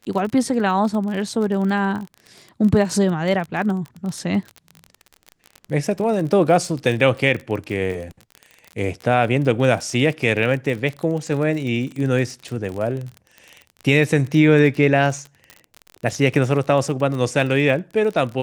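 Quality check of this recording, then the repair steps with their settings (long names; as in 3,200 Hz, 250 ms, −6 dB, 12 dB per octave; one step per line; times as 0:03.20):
surface crackle 34 per second −26 dBFS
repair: click removal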